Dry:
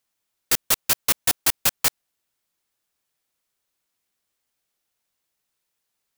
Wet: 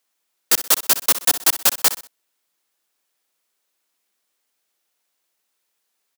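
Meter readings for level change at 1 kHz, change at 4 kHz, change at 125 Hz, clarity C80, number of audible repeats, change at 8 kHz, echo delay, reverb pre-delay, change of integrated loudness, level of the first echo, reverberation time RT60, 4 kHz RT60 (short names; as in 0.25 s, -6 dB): +4.5 dB, +4.0 dB, n/a, none, 3, +4.5 dB, 63 ms, none, +4.5 dB, -13.0 dB, none, none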